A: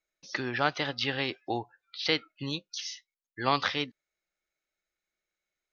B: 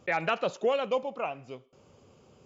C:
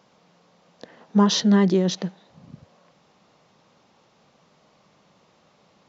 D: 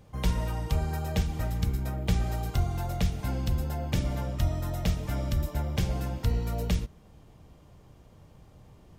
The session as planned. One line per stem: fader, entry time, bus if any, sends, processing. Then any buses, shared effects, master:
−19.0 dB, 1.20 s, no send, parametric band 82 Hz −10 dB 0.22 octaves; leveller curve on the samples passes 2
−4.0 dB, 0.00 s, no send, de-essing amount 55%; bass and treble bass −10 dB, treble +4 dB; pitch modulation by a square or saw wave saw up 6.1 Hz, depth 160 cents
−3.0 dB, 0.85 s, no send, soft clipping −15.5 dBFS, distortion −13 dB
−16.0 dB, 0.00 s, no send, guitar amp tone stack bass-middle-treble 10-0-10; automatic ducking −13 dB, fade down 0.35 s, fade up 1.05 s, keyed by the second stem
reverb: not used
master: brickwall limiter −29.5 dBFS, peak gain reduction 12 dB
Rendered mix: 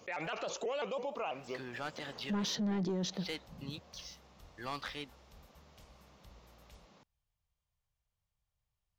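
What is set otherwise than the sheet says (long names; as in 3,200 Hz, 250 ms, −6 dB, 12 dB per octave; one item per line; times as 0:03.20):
stem B −4.0 dB → +3.5 dB
stem C: entry 0.85 s → 1.15 s
stem D −16.0 dB → −24.0 dB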